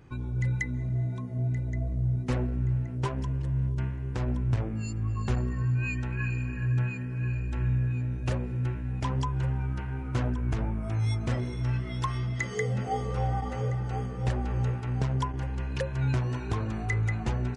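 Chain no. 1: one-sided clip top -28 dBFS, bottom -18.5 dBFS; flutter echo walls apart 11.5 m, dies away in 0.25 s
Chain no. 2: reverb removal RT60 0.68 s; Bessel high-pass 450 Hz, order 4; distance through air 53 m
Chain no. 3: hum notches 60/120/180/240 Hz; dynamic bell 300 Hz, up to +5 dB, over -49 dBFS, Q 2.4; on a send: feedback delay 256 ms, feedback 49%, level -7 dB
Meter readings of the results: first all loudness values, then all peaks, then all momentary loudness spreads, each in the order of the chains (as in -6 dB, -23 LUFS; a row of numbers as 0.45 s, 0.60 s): -31.5 LUFS, -41.5 LUFS, -30.0 LUFS; -18.0 dBFS, -19.0 dBFS, -14.0 dBFS; 3 LU, 13 LU, 4 LU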